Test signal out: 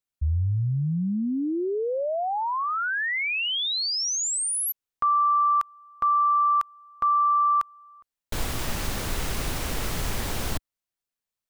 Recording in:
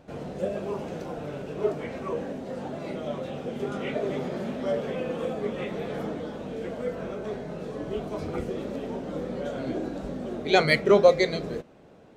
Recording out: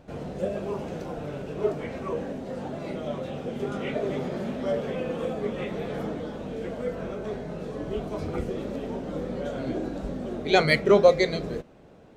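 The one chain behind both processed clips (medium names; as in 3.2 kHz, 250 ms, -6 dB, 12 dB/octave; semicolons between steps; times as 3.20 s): bass shelf 80 Hz +8 dB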